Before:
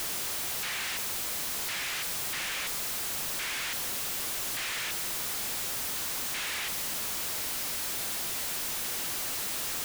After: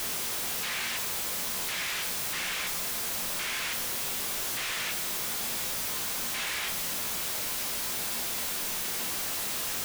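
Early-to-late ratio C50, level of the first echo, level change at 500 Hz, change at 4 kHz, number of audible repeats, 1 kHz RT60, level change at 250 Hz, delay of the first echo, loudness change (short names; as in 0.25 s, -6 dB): 11.5 dB, none, +2.5 dB, +1.0 dB, none, 0.40 s, +2.5 dB, none, +1.0 dB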